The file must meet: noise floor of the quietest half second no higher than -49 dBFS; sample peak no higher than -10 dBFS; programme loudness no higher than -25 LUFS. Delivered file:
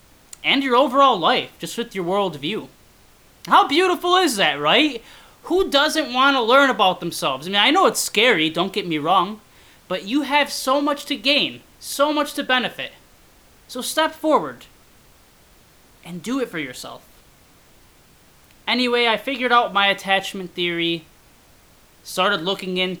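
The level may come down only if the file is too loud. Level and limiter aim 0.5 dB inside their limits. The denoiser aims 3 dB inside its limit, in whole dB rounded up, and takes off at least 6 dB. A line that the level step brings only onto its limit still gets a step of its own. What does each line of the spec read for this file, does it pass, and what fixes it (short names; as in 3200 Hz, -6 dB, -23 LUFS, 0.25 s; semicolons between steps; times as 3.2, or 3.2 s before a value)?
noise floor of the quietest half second -52 dBFS: OK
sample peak -3.5 dBFS: fail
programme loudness -19.0 LUFS: fail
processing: gain -6.5 dB; limiter -10.5 dBFS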